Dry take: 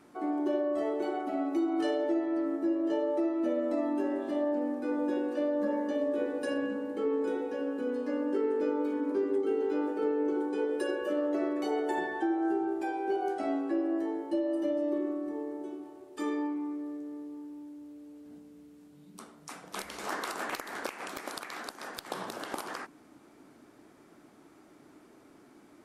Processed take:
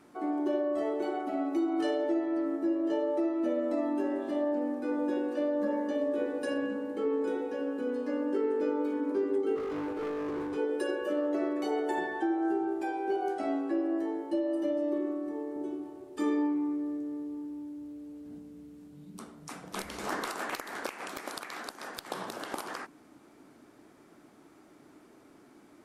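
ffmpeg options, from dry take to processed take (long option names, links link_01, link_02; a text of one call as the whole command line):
ffmpeg -i in.wav -filter_complex "[0:a]asplit=3[link_01][link_02][link_03];[link_01]afade=type=out:start_time=9.55:duration=0.02[link_04];[link_02]volume=32dB,asoftclip=hard,volume=-32dB,afade=type=in:start_time=9.55:duration=0.02,afade=type=out:start_time=10.56:duration=0.02[link_05];[link_03]afade=type=in:start_time=10.56:duration=0.02[link_06];[link_04][link_05][link_06]amix=inputs=3:normalize=0,asettb=1/sr,asplit=3[link_07][link_08][link_09];[link_07]atrim=end=15.564[link_10];[link_08]atrim=start=15.56:end=20.28,asetpts=PTS-STARTPTS,afade=type=in:duration=0.004:curve=qsin,afade=type=out:start_time=4.716:duration=0.004:curve=qsin,lowshelf=frequency=260:gain=10[link_11];[link_09]atrim=start=20.276[link_12];[link_10][link_11]acrossfade=duration=0.004:curve1=hsin:curve2=qsin[link_13];[link_13][link_12]acrossfade=duration=0.004:curve1=qsin:curve2=hsin" out.wav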